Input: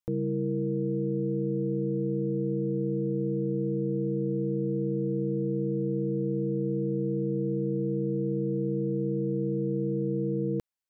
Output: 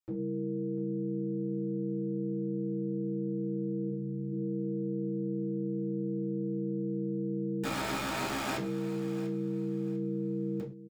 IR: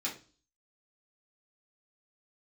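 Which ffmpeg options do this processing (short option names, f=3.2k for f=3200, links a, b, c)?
-filter_complex "[0:a]asplit=3[a][b][c];[a]afade=t=out:st=3.89:d=0.02[d];[b]asplit=2[e][f];[f]adelay=44,volume=-6.5dB[g];[e][g]amix=inputs=2:normalize=0,afade=t=in:st=3.89:d=0.02,afade=t=out:st=4.31:d=0.02[h];[c]afade=t=in:st=4.31:d=0.02[i];[d][h][i]amix=inputs=3:normalize=0,asettb=1/sr,asplit=3[j][k][l];[j]atrim=end=7.634[m];[k]atrim=start=7.63:end=8.57,asetpts=PTS-STARTPTS,afade=t=in:d=0.004:c=qsin,afade=t=out:st=0.936:d=0.004:c=qsin,aeval=exprs='(mod(20*val(0)+1,2)-1)/20':c=same[n];[l]atrim=start=8.566[o];[m][n]acrossfade=d=0.004:c1=hsin:c2=qsin[p];[p][o]acrossfade=d=0.004:c1=qsin:c2=hsin,aecho=1:1:694|1388|2082:0.178|0.0498|0.0139[q];[1:a]atrim=start_sample=2205,atrim=end_sample=6174[r];[q][r]afir=irnorm=-1:irlink=0,volume=-5.5dB"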